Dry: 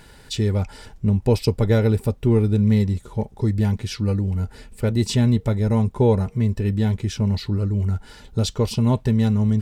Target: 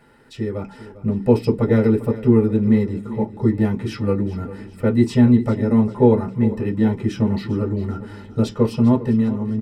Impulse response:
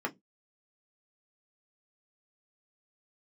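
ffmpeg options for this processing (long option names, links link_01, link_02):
-filter_complex "[0:a]dynaudnorm=framelen=130:gausssize=11:maxgain=11.5dB,aecho=1:1:400|800|1200|1600:0.168|0.0722|0.031|0.0133[link_01];[1:a]atrim=start_sample=2205[link_02];[link_01][link_02]afir=irnorm=-1:irlink=0,volume=-9dB"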